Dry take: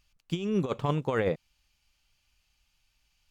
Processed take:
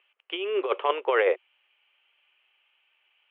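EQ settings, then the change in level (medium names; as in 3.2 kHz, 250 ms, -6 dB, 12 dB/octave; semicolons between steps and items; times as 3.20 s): Chebyshev band-pass 370–3100 Hz, order 5; distance through air 110 m; treble shelf 2.3 kHz +11 dB; +6.0 dB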